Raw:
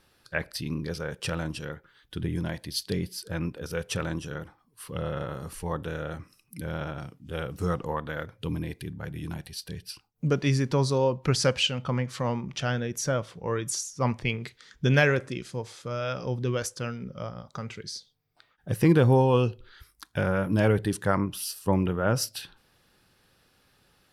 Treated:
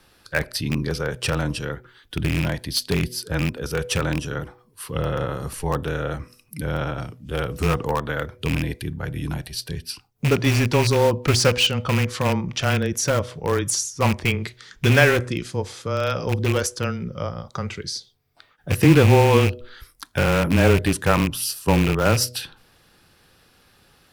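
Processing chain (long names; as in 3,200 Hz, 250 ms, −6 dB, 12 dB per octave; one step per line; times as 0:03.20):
loose part that buzzes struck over −26 dBFS, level −22 dBFS
frequency shifter −15 Hz
in parallel at −12 dB: wrap-around overflow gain 21 dB
on the sum: hum removal 123.1 Hz, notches 5
level +6 dB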